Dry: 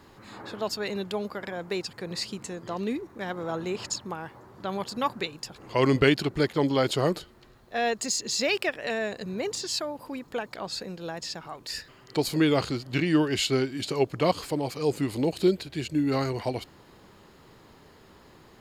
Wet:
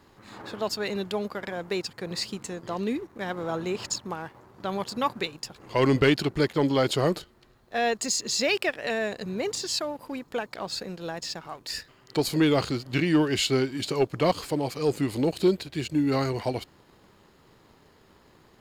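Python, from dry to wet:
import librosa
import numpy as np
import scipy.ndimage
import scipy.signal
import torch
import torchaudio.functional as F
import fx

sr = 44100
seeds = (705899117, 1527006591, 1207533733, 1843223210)

y = fx.leveller(x, sr, passes=1)
y = y * 10.0 ** (-2.5 / 20.0)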